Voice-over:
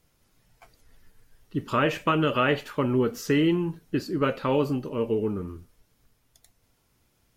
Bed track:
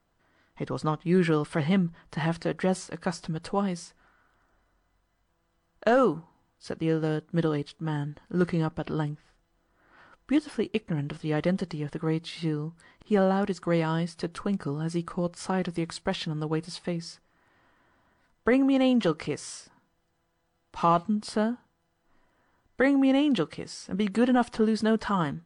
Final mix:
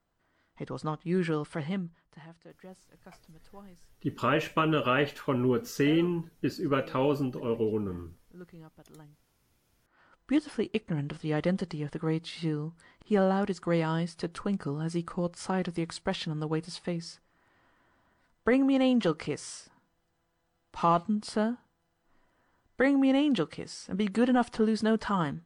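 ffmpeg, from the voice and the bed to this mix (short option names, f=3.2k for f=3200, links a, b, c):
-filter_complex "[0:a]adelay=2500,volume=-3dB[a];[1:a]volume=15.5dB,afade=t=out:st=1.43:d=0.83:silence=0.133352,afade=t=in:st=9.75:d=0.59:silence=0.0891251[b];[a][b]amix=inputs=2:normalize=0"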